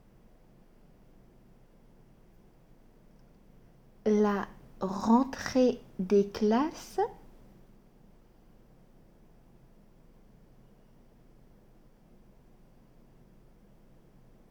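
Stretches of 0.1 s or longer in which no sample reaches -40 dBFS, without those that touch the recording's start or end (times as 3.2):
4.5–4.81
5.79–5.99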